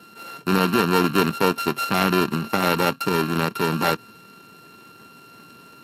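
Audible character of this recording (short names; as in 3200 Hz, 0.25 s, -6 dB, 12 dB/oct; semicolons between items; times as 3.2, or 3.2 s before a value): a buzz of ramps at a fixed pitch in blocks of 32 samples; Speex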